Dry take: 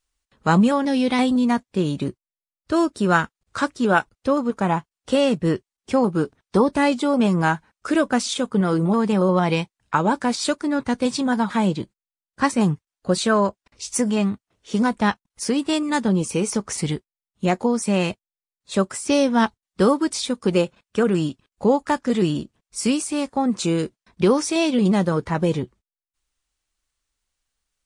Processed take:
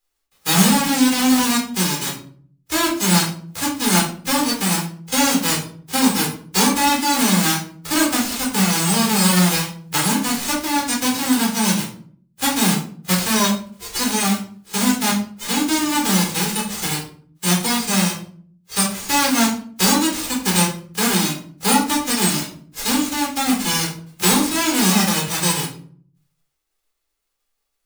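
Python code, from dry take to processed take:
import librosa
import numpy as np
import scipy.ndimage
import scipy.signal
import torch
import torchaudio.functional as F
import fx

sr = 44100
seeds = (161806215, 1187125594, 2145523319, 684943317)

y = fx.envelope_flatten(x, sr, power=0.1)
y = fx.room_shoebox(y, sr, seeds[0], volume_m3=500.0, walls='furnished', distance_m=4.0)
y = y * 10.0 ** (-4.5 / 20.0)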